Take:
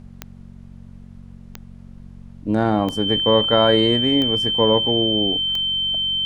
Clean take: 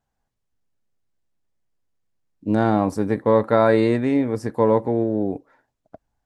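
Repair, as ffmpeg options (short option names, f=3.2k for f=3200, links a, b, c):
-af "adeclick=t=4,bandreject=f=46:t=h:w=4,bandreject=f=92:t=h:w=4,bandreject=f=138:t=h:w=4,bandreject=f=184:t=h:w=4,bandreject=f=230:t=h:w=4,bandreject=f=3.1k:w=30,agate=range=-21dB:threshold=-33dB"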